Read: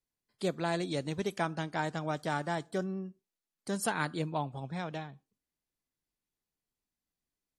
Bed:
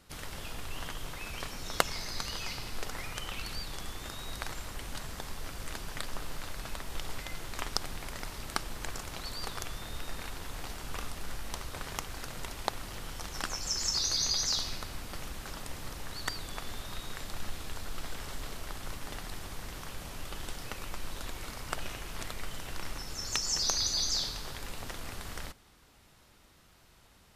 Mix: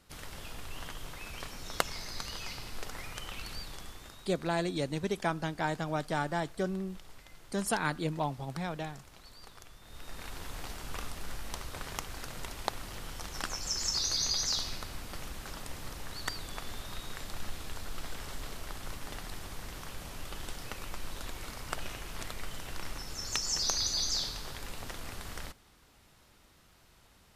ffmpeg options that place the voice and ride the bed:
-filter_complex "[0:a]adelay=3850,volume=1.12[s0];[1:a]volume=3.16,afade=t=out:st=3.6:d=0.74:silence=0.281838,afade=t=in:st=9.82:d=0.58:silence=0.223872[s1];[s0][s1]amix=inputs=2:normalize=0"

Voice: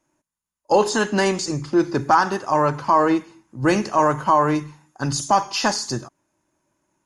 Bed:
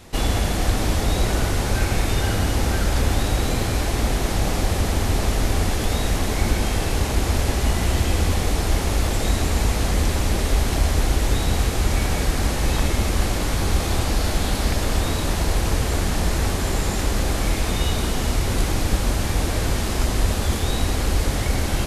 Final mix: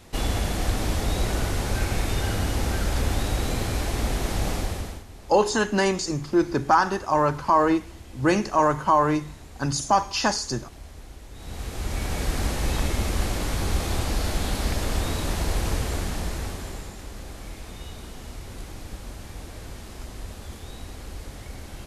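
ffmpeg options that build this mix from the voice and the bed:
-filter_complex "[0:a]adelay=4600,volume=0.75[s0];[1:a]volume=5.31,afade=t=out:st=4.51:d=0.53:silence=0.112202,afade=t=in:st=11.33:d=1.02:silence=0.112202,afade=t=out:st=15.69:d=1.26:silence=0.237137[s1];[s0][s1]amix=inputs=2:normalize=0"

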